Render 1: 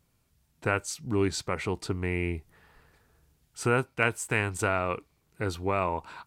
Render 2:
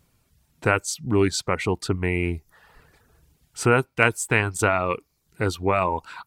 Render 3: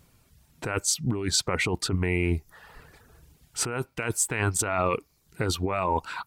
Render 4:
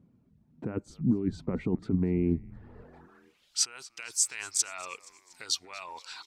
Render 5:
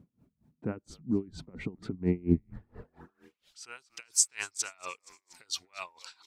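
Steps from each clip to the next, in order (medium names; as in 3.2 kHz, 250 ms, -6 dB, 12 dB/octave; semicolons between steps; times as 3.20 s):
reverb removal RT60 0.55 s; trim +7 dB
compressor with a negative ratio -26 dBFS, ratio -1
band-pass sweep 220 Hz -> 5.4 kHz, 2.56–3.62 s; frequency-shifting echo 237 ms, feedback 57%, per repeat -140 Hz, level -21 dB; trim +6.5 dB
logarithmic tremolo 4.3 Hz, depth 28 dB; trim +5 dB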